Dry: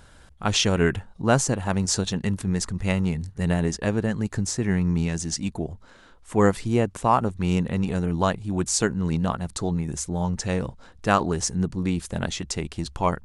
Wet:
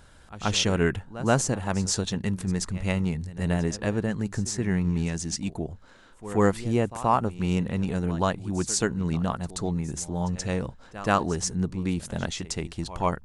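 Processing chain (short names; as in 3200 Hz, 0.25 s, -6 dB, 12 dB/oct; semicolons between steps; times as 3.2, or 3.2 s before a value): reverse echo 0.129 s -16 dB; gain -2.5 dB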